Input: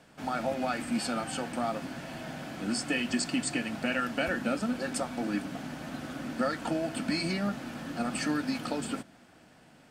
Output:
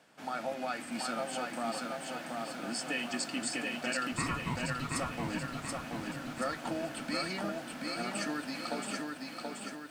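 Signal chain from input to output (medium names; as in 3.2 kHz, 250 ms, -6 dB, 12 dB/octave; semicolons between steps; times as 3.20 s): high-pass 380 Hz 6 dB/octave; 4.12–4.92 s: frequency shift -390 Hz; bit-crushed delay 730 ms, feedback 55%, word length 10-bit, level -3 dB; trim -3.5 dB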